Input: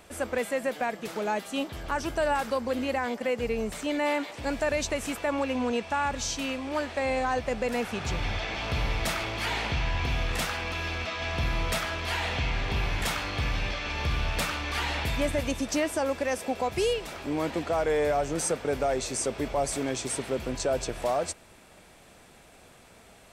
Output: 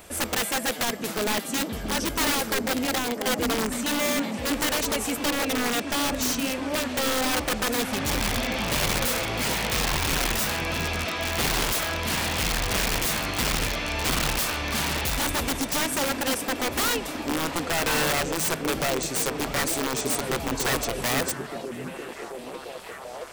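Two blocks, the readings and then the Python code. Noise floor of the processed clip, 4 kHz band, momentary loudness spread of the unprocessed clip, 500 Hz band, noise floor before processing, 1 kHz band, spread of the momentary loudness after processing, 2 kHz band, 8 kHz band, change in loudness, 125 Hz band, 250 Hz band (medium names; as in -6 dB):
-37 dBFS, +8.0 dB, 4 LU, -1.0 dB, -54 dBFS, +2.5 dB, 4 LU, +4.5 dB, +9.0 dB, +4.0 dB, +1.0 dB, +4.0 dB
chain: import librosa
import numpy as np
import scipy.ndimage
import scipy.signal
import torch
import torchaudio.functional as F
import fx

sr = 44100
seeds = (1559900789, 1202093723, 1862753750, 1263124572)

y = fx.high_shelf(x, sr, hz=9000.0, db=11.5)
y = fx.rider(y, sr, range_db=10, speed_s=2.0)
y = (np.mod(10.0 ** (22.5 / 20.0) * y + 1.0, 2.0) - 1.0) / 10.0 ** (22.5 / 20.0)
y = fx.echo_stepped(y, sr, ms=669, hz=200.0, octaves=0.7, feedback_pct=70, wet_db=0)
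y = y * 10.0 ** (2.5 / 20.0)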